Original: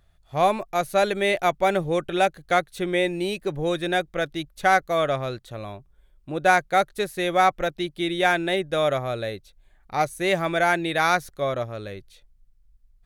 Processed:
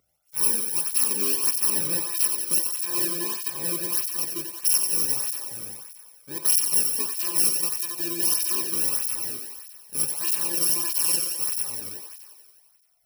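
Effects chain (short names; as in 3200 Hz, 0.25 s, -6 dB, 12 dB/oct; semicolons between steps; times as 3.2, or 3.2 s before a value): FFT order left unsorted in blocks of 64 samples; HPF 44 Hz; high shelf 5700 Hz +4 dB; thinning echo 88 ms, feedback 73%, high-pass 270 Hz, level -5.5 dB; tape flanging out of phase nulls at 1.6 Hz, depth 1.2 ms; gain -3 dB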